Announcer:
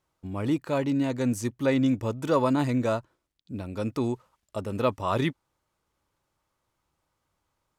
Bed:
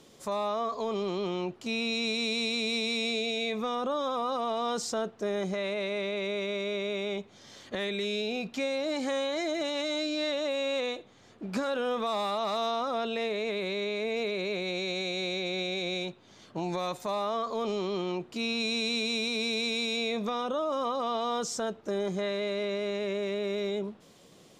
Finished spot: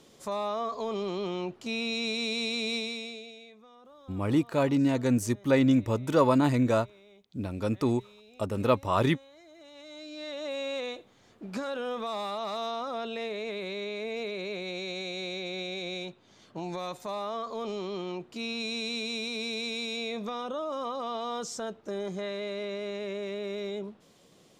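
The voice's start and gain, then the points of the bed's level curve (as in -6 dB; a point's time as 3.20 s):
3.85 s, +1.0 dB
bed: 2.75 s -1 dB
3.61 s -23.5 dB
9.47 s -23.5 dB
10.53 s -3.5 dB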